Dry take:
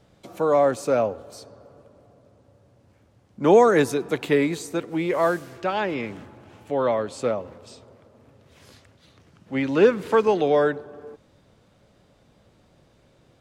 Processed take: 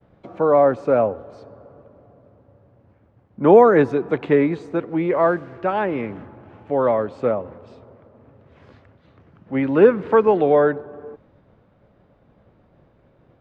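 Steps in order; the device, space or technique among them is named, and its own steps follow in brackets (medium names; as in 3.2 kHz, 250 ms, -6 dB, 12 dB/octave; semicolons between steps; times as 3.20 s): hearing-loss simulation (low-pass 1.7 kHz 12 dB/octave; expander -56 dBFS); trim +4 dB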